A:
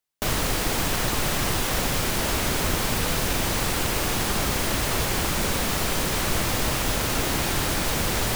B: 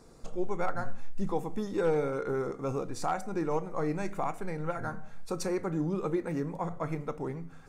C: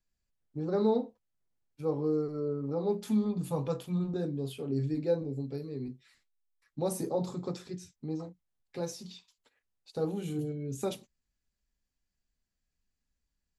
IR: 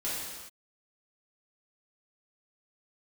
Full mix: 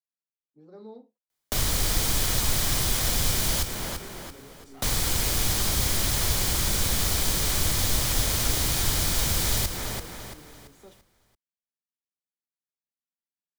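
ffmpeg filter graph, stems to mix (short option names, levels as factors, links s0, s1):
-filter_complex "[0:a]bandreject=f=2700:w=12,adelay=1300,volume=1.26,asplit=3[s0][s1][s2];[s0]atrim=end=3.63,asetpts=PTS-STARTPTS,afade=t=out:st=3.626:d=0.004:c=hsin[s3];[s1]atrim=start=3.63:end=4.82,asetpts=PTS-STARTPTS,volume=0[s4];[s2]atrim=start=4.82,asetpts=PTS-STARTPTS,afade=t=in:d=0.004:c=hsin[s5];[s3][s4][s5]concat=n=3:v=0:a=1,asplit=2[s6][s7];[s7]volume=0.376[s8];[1:a]volume=39.8,asoftclip=hard,volume=0.0251,adelay=1700,volume=0.158[s9];[2:a]highpass=f=170:w=0.5412,highpass=f=170:w=1.3066,volume=0.133[s10];[s8]aecho=0:1:338|676|1014|1352|1690:1|0.36|0.13|0.0467|0.0168[s11];[s6][s9][s10][s11]amix=inputs=4:normalize=0,acrossover=split=120|3000[s12][s13][s14];[s13]acompressor=threshold=0.0224:ratio=6[s15];[s12][s15][s14]amix=inputs=3:normalize=0"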